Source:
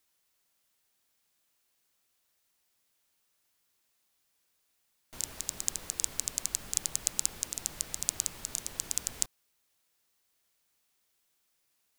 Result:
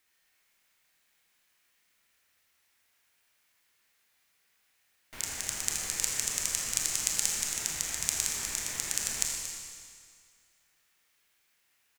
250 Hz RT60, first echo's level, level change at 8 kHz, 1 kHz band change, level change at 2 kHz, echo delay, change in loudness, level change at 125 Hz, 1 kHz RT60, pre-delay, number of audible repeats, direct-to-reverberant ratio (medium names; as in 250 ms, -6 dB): 2.0 s, -13.0 dB, +3.0 dB, +5.5 dB, +10.5 dB, 231 ms, +3.0 dB, +2.5 dB, 2.0 s, 26 ms, 1, -1.0 dB